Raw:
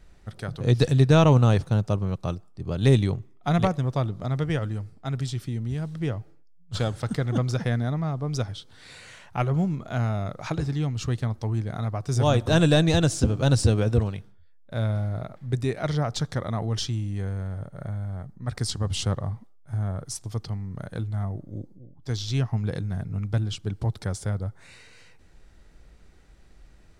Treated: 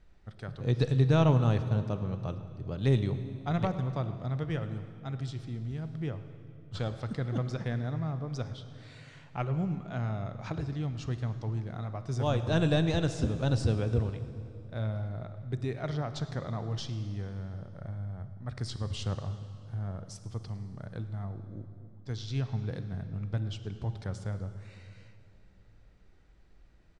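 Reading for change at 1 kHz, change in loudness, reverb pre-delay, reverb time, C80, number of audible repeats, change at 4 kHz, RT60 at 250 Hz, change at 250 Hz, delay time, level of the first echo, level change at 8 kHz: -7.5 dB, -7.0 dB, 29 ms, 2.8 s, 11.5 dB, 1, -9.5 dB, 3.3 s, -7.0 dB, 108 ms, -20.5 dB, -14.0 dB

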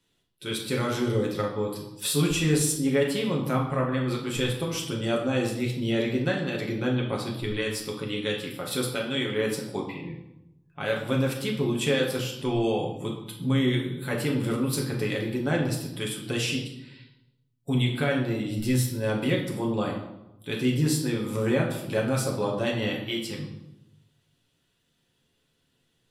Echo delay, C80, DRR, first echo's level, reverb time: no echo, 8.5 dB, -2.0 dB, no echo, 0.95 s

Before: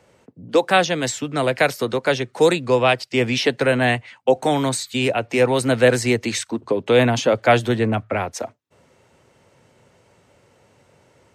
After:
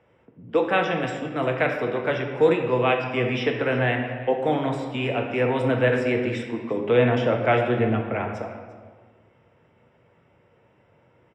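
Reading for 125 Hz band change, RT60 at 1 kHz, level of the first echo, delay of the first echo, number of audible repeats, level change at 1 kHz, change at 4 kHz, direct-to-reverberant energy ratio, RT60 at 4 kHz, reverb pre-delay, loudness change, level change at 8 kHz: -2.5 dB, 1.5 s, -18.5 dB, 346 ms, 1, -4.5 dB, -10.0 dB, 2.0 dB, 1.0 s, 4 ms, -4.0 dB, under -20 dB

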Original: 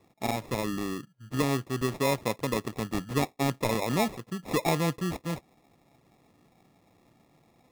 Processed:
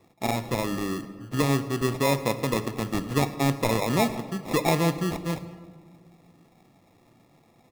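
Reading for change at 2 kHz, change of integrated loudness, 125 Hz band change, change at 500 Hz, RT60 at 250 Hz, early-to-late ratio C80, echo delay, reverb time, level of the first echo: +3.5 dB, +3.5 dB, +4.5 dB, +3.5 dB, 2.5 s, 13.5 dB, 106 ms, 1.8 s, -21.0 dB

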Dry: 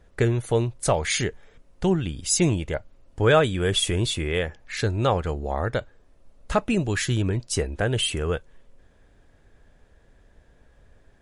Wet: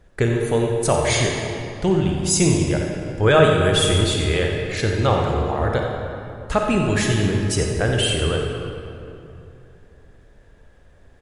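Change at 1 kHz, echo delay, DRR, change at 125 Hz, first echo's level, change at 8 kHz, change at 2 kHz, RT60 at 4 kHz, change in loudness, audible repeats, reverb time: +5.0 dB, 89 ms, 0.5 dB, +5.0 dB, -11.0 dB, +3.5 dB, +5.0 dB, 1.7 s, +4.5 dB, 1, 2.8 s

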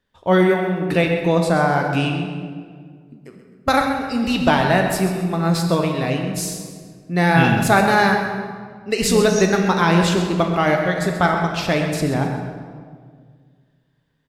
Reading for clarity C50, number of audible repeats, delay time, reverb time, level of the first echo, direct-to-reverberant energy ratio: 4.0 dB, 2, 131 ms, 1.8 s, -10.5 dB, 2.5 dB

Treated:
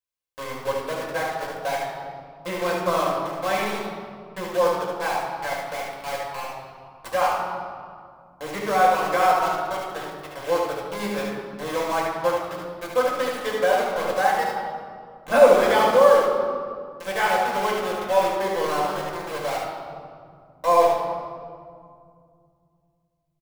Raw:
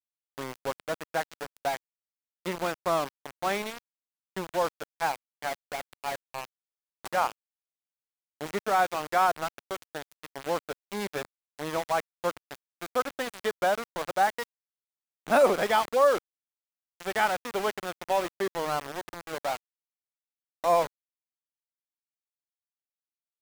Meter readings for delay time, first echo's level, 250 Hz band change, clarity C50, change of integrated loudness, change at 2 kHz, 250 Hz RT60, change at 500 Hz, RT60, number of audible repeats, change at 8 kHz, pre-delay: 73 ms, -3.0 dB, +6.0 dB, 0.0 dB, +6.5 dB, +5.5 dB, 3.3 s, +8.0 dB, 2.2 s, 1, +4.0 dB, 4 ms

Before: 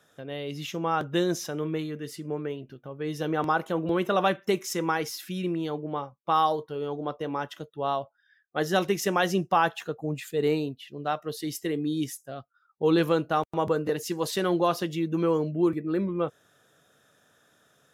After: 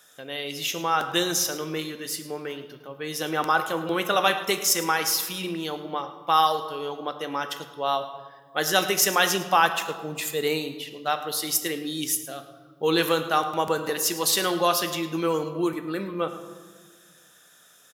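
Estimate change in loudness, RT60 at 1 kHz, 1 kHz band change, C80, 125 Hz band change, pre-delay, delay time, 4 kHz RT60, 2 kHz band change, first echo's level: +3.0 dB, 1.5 s, +3.5 dB, 11.0 dB, -5.0 dB, 3 ms, 107 ms, 1.0 s, +6.5 dB, -16.0 dB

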